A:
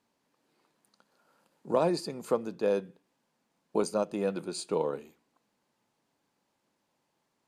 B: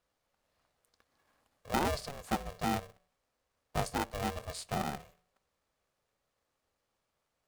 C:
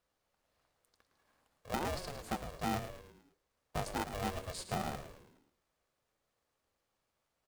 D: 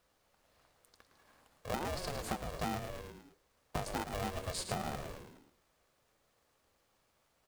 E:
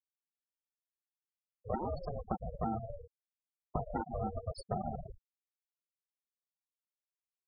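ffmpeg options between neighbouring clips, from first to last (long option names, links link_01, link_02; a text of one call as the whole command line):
ffmpeg -i in.wav -af "bandreject=frequency=152.2:width_type=h:width=4,bandreject=frequency=304.4:width_type=h:width=4,bandreject=frequency=456.6:width_type=h:width=4,aeval=exprs='val(0)*sgn(sin(2*PI*280*n/s))':channel_layout=same,volume=-5dB" out.wav
ffmpeg -i in.wav -filter_complex "[0:a]alimiter=limit=-24dB:level=0:latency=1:release=384,asplit=2[link_01][link_02];[link_02]asplit=5[link_03][link_04][link_05][link_06][link_07];[link_03]adelay=109,afreqshift=-100,volume=-10dB[link_08];[link_04]adelay=218,afreqshift=-200,volume=-16.4dB[link_09];[link_05]adelay=327,afreqshift=-300,volume=-22.8dB[link_10];[link_06]adelay=436,afreqshift=-400,volume=-29.1dB[link_11];[link_07]adelay=545,afreqshift=-500,volume=-35.5dB[link_12];[link_08][link_09][link_10][link_11][link_12]amix=inputs=5:normalize=0[link_13];[link_01][link_13]amix=inputs=2:normalize=0,volume=-1.5dB" out.wav
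ffmpeg -i in.wav -af "acompressor=threshold=-43dB:ratio=6,volume=8.5dB" out.wav
ffmpeg -i in.wav -af "afftfilt=real='re*gte(hypot(re,im),0.0316)':imag='im*gte(hypot(re,im),0.0316)':win_size=1024:overlap=0.75,volume=2.5dB" out.wav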